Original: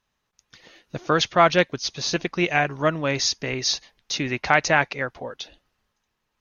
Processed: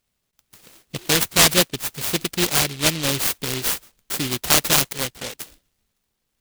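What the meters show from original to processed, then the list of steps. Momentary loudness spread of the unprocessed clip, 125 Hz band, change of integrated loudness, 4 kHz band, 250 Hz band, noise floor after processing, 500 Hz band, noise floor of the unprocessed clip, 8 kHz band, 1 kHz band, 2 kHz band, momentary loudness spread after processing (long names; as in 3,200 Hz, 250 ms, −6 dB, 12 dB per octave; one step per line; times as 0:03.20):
17 LU, +1.5 dB, +3.0 dB, +5.5 dB, +0.5 dB, −76 dBFS, −4.0 dB, −77 dBFS, can't be measured, −5.0 dB, −2.0 dB, 18 LU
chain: short delay modulated by noise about 3,100 Hz, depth 0.36 ms
level +1.5 dB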